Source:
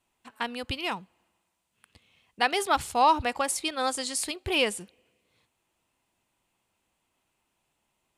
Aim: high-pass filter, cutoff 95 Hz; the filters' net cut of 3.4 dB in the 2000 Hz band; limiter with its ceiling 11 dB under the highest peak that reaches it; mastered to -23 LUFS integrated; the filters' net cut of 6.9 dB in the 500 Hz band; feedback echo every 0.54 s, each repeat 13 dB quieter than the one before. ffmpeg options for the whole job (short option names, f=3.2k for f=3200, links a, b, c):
-af "highpass=95,equalizer=f=500:t=o:g=-8.5,equalizer=f=2k:t=o:g=-4,alimiter=limit=-22.5dB:level=0:latency=1,aecho=1:1:540|1080|1620:0.224|0.0493|0.0108,volume=11dB"